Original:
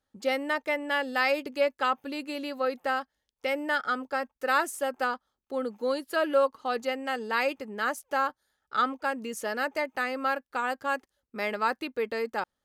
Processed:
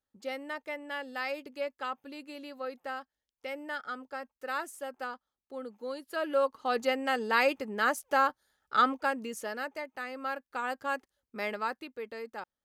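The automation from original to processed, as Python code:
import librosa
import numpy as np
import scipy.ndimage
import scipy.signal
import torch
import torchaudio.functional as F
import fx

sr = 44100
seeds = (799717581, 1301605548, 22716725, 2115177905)

y = fx.gain(x, sr, db=fx.line((5.94, -9.5), (6.84, 1.5), (8.93, 1.5), (9.89, -10.0), (10.75, -3.5), (11.49, -3.5), (11.9, -10.0)))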